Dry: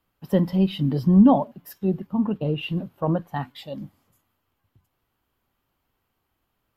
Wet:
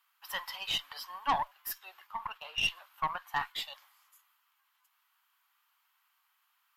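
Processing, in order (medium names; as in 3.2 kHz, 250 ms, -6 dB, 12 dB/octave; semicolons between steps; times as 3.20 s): steep high-pass 970 Hz 36 dB/octave; valve stage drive 28 dB, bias 0.5; trim +7 dB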